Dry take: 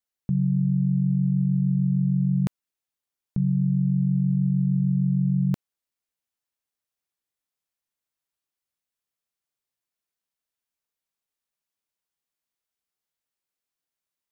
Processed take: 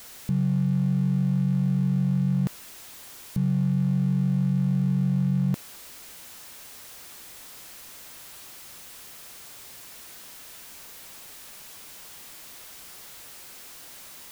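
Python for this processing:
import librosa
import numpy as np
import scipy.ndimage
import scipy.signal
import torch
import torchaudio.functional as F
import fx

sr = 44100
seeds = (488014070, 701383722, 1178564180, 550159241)

y = x + 0.5 * 10.0 ** (-35.0 / 20.0) * np.sign(x)
y = y * librosa.db_to_amplitude(-2.0)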